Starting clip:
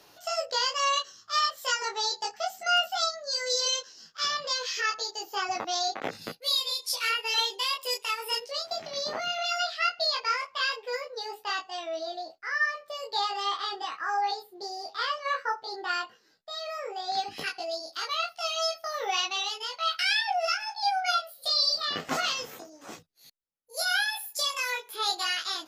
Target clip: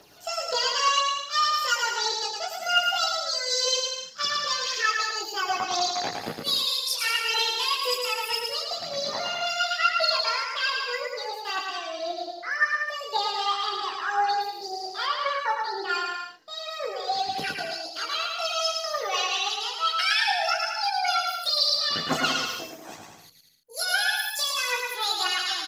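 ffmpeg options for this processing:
-filter_complex "[0:a]aphaser=in_gain=1:out_gain=1:delay=1.3:decay=0.53:speed=1.9:type=triangular,asplit=2[s0][s1];[s1]aecho=0:1:110|192.5|254.4|300.8|335.6:0.631|0.398|0.251|0.158|0.1[s2];[s0][s2]amix=inputs=2:normalize=0,asettb=1/sr,asplit=3[s3][s4][s5];[s3]atrim=end=15.074[s6];[s4]atrim=start=15.07:end=15.89,asetpts=PTS-STARTPTS,afade=t=in:d=0.004:c=qsin,afade=t=out:st=0.816:d=0.004:c=qsin,acrossover=split=6200[s7][s8];[s8]acompressor=threshold=0.002:ratio=4:attack=1:release=60[s9];[s7][s9]amix=inputs=2:normalize=0[s10];[s5]atrim=start=15.886[s11];[s6][s10]acrossfade=d=0.004:c1=hsin:c2=qsin[s12];[s12][s11]acrossfade=d=0.004:c1=qsin:c2=hsin"

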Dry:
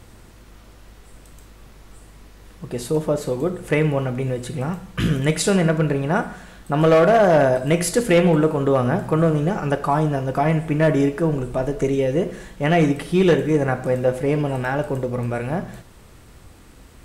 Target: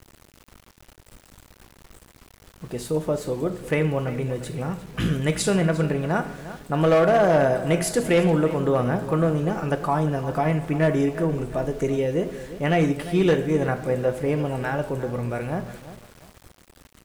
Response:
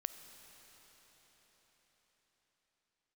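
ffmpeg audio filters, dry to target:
-filter_complex "[0:a]asplit=2[s0][s1];[s1]adelay=350,lowpass=f=4400:p=1,volume=0.2,asplit=2[s2][s3];[s3]adelay=350,lowpass=f=4400:p=1,volume=0.37,asplit=2[s4][s5];[s5]adelay=350,lowpass=f=4400:p=1,volume=0.37,asplit=2[s6][s7];[s7]adelay=350,lowpass=f=4400:p=1,volume=0.37[s8];[s0][s2][s4][s6][s8]amix=inputs=5:normalize=0,aeval=exprs='val(0)*gte(abs(val(0)),0.00944)':c=same,volume=0.668"

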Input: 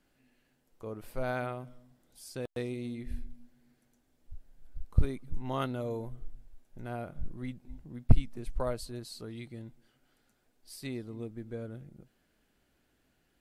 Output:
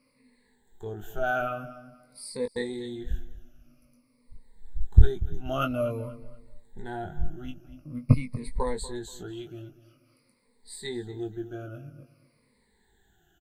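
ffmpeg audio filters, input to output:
-filter_complex "[0:a]afftfilt=real='re*pow(10,23/40*sin(2*PI*(0.94*log(max(b,1)*sr/1024/100)/log(2)-(-0.49)*(pts-256)/sr)))':imag='im*pow(10,23/40*sin(2*PI*(0.94*log(max(b,1)*sr/1024/100)/log(2)-(-0.49)*(pts-256)/sr)))':win_size=1024:overlap=0.75,asplit=2[s0][s1];[s1]adelay=20,volume=0.501[s2];[s0][s2]amix=inputs=2:normalize=0,asplit=2[s3][s4];[s4]adelay=239,lowpass=f=3900:p=1,volume=0.158,asplit=2[s5][s6];[s6]adelay=239,lowpass=f=3900:p=1,volume=0.28,asplit=2[s7][s8];[s8]adelay=239,lowpass=f=3900:p=1,volume=0.28[s9];[s3][s5][s7][s9]amix=inputs=4:normalize=0,volume=0.891"

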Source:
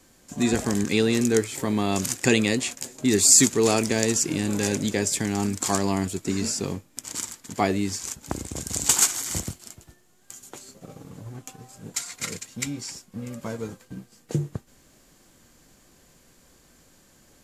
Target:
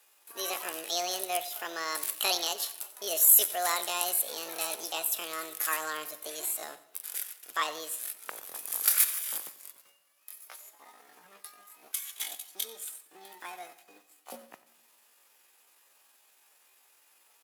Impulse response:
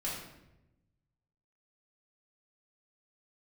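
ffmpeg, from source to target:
-filter_complex "[0:a]highpass=650,asetrate=70004,aresample=44100,atempo=0.629961,aecho=1:1:91|182|273:0.126|0.0516|0.0212,asplit=2[s0][s1];[1:a]atrim=start_sample=2205,adelay=44[s2];[s1][s2]afir=irnorm=-1:irlink=0,volume=0.0891[s3];[s0][s3]amix=inputs=2:normalize=0,volume=0.668"

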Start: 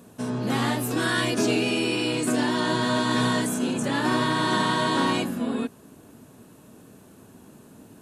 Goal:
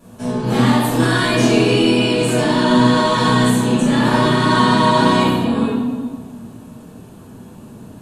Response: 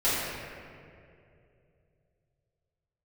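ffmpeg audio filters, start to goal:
-filter_complex "[0:a]lowshelf=f=140:g=7.5[s0];[1:a]atrim=start_sample=2205,asetrate=74970,aresample=44100[s1];[s0][s1]afir=irnorm=-1:irlink=0,volume=0.841"

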